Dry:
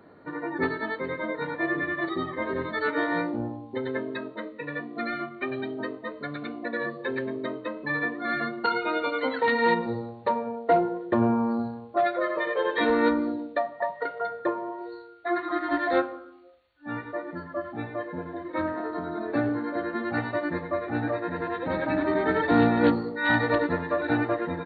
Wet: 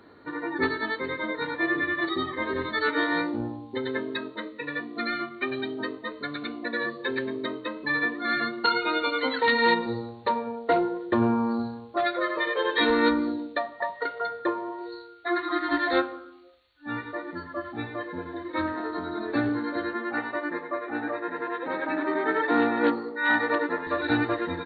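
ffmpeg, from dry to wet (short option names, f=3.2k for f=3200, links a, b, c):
-filter_complex "[0:a]asettb=1/sr,asplit=3[a][b][c];[a]atrim=end=19.934[d];[b]atrim=start=19.93:end=23.87,asetpts=PTS-STARTPTS,afade=t=in:d=0.004:c=qsin,afade=t=out:st=3.936:d=0.004:c=qsin,highpass=310,lowpass=2.2k[e];[c]atrim=start=23.866[f];[d][e]acrossfade=d=0.004:c1=hsin:c2=qsin[g];[g][f]acrossfade=d=0.004:c1=qsin:c2=hsin,equalizer=f=160:t=o:w=0.67:g=-9,equalizer=f=630:t=o:w=0.67:g=-7,equalizer=f=4k:t=o:w=0.67:g=7,volume=2.5dB"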